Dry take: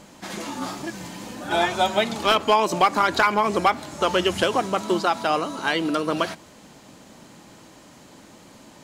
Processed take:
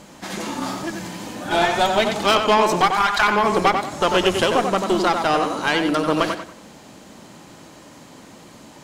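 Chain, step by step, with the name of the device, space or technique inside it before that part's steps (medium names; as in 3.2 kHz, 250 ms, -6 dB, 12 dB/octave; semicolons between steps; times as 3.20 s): 2.81–3.28 s: elliptic high-pass 710 Hz; rockabilly slapback (valve stage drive 15 dB, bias 0.55; tape echo 92 ms, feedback 33%, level -4 dB, low-pass 2.6 kHz); trim +5.5 dB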